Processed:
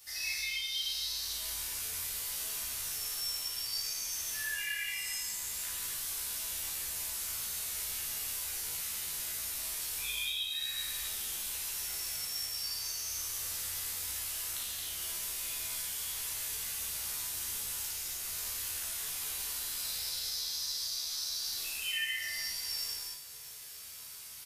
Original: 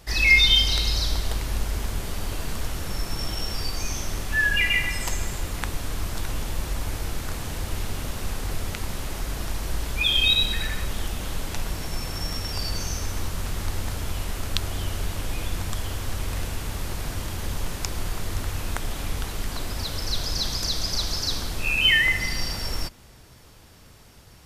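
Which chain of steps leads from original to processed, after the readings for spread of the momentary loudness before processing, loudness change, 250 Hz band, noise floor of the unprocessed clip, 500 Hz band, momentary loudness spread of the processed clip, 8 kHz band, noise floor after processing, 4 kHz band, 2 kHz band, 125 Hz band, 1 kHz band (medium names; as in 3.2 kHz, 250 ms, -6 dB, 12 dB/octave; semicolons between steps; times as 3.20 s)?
13 LU, -8.5 dB, -26.0 dB, -49 dBFS, -20.0 dB, 2 LU, +0.5 dB, -47 dBFS, -10.5 dB, -15.0 dB, -28.0 dB, -15.5 dB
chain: pre-emphasis filter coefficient 0.97; compression 6:1, threshold -45 dBFS, peak gain reduction 21.5 dB; doubling 14 ms -2.5 dB; early reflections 34 ms -5 dB, 57 ms -5 dB; gated-style reverb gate 330 ms flat, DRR -7.5 dB; trim -2 dB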